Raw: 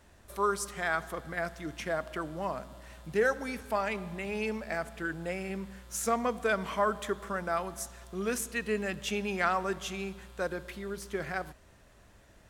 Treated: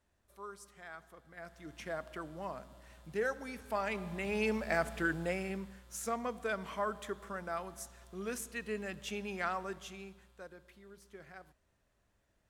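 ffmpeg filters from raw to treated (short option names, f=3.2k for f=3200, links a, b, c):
-af "volume=3dB,afade=t=in:st=1.3:d=0.58:silence=0.281838,afade=t=in:st=3.55:d=1.38:silence=0.298538,afade=t=out:st=4.93:d=0.88:silence=0.298538,afade=t=out:st=9.49:d=0.98:silence=0.316228"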